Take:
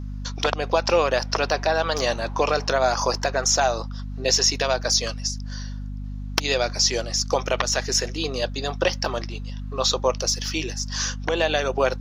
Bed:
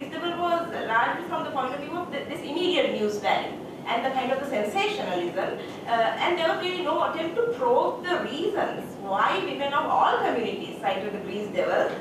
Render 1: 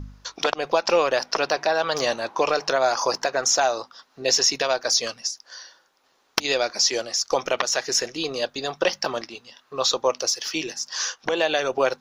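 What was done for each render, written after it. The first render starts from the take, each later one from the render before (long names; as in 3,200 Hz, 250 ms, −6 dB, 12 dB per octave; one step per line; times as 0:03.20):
hum removal 50 Hz, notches 5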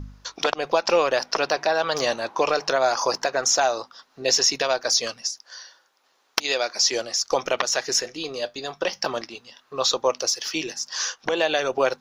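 0:05.42–0:06.85: low-shelf EQ 250 Hz −12 dB
0:08.01–0:09.02: tuned comb filter 100 Hz, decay 0.17 s, mix 50%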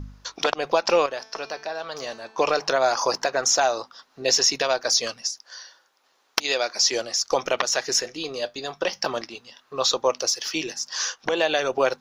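0:01.06–0:02.38: tuned comb filter 220 Hz, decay 0.7 s, mix 70%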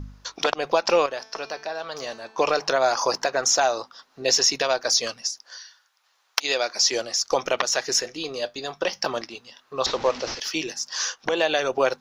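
0:05.57–0:06.42: high-pass filter 1,500 Hz → 720 Hz
0:09.86–0:10.40: linear delta modulator 32 kbit/s, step −30 dBFS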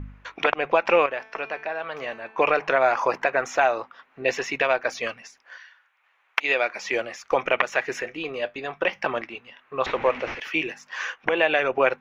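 high shelf with overshoot 3,400 Hz −13.5 dB, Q 3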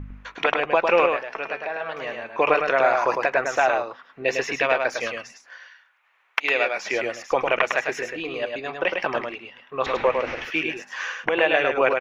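single-tap delay 104 ms −4.5 dB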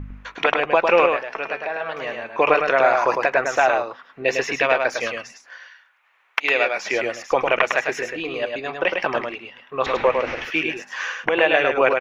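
level +2.5 dB
brickwall limiter −2 dBFS, peak gain reduction 1.5 dB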